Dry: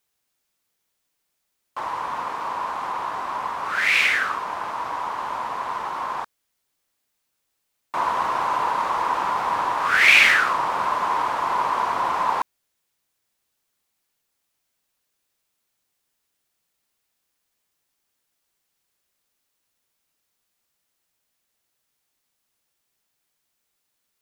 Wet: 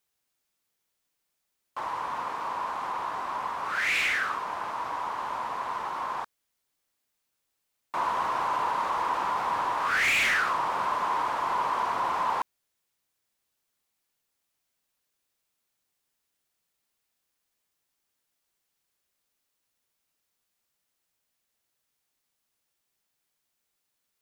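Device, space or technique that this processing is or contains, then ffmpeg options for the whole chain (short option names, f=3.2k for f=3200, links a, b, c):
saturation between pre-emphasis and de-emphasis: -af "highshelf=f=2.3k:g=9,asoftclip=type=tanh:threshold=-12.5dB,highshelf=f=2.3k:g=-9,volume=-4dB"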